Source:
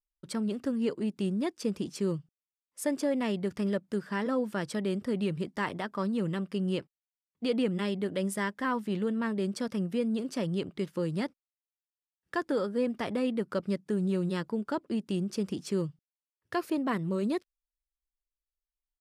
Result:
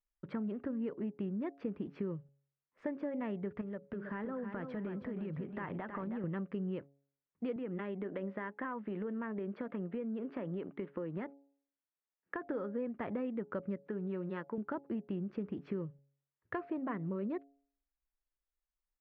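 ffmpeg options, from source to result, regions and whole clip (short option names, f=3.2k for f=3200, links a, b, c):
-filter_complex "[0:a]asettb=1/sr,asplit=3[a][b][c];[a]atrim=end=3.614[d];[b]atrim=start=3.61:end=6.24,asetpts=PTS-STARTPTS,afade=t=in:d=0.004:c=qsin,afade=t=out:st=2.626:d=0.004:c=qsin,acompressor=threshold=-36dB:ratio=6:attack=3.2:release=140:knee=1:detection=peak,aecho=1:1:319|638|957:0.422|0.118|0.0331,atrim=end_sample=115983[e];[c]atrim=start=6.236[f];[d][e]acrossfade=d=0.004:c1=hsin:c2=qsin[g];[g][f]acrossfade=d=0.004:c1=qsin:c2=hsin,asettb=1/sr,asplit=3[h][i][j];[h]atrim=end=7.564[k];[i]atrim=start=7.56:end=12.45,asetpts=PTS-STARTPTS,afade=t=in:d=0.004:c=qsin,afade=t=out:st=4.886:d=0.004:c=qsin,highpass=230,lowpass=4k,acompressor=threshold=-32dB:ratio=3:attack=3.2:release=140:knee=1:detection=peak[l];[j]atrim=start=12.446[m];[k][l]acrossfade=d=0.004:c1=hsin:c2=qsin[n];[n][m]acrossfade=d=0.004:c1=qsin:c2=hsin,asettb=1/sr,asplit=3[o][p][q];[o]atrim=end=13.774[r];[p]atrim=start=13.77:end=14.58,asetpts=PTS-STARTPTS,afade=t=in:d=0.004:c=qsin,afade=t=out:st=0.806:d=0.004:c=qsin,highpass=f=360:p=1,acompressor=mode=upward:threshold=-52dB:ratio=2.5:attack=3.2:release=140:knee=2.83:detection=peak[s];[q]atrim=start=14.576[t];[r][s]acrossfade=d=0.004:c1=hsin:c2=qsin[u];[u][t]acrossfade=d=0.004:c1=qsin:c2=hsin,lowpass=f=2.1k:w=0.5412,lowpass=f=2.1k:w=1.3066,acompressor=threshold=-37dB:ratio=4,bandreject=f=139.6:t=h:w=4,bandreject=f=279.2:t=h:w=4,bandreject=f=418.8:t=h:w=4,bandreject=f=558.4:t=h:w=4,bandreject=f=698:t=h:w=4,bandreject=f=837.6:t=h:w=4,volume=1dB"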